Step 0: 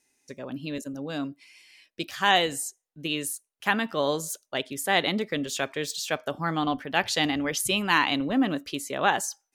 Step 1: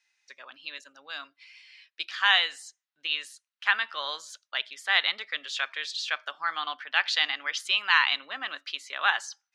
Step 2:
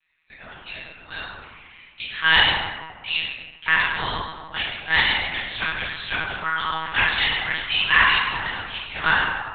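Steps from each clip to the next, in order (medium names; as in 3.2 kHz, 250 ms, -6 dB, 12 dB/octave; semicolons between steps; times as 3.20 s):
Chebyshev band-pass 1.3–4.3 kHz, order 2; trim +3 dB
reverberation RT60 1.7 s, pre-delay 3 ms, DRR -11.5 dB; monotone LPC vocoder at 8 kHz 160 Hz; trim -6.5 dB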